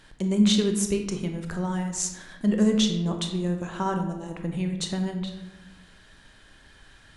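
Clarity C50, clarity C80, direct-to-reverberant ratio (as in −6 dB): 7.0 dB, 9.0 dB, 4.5 dB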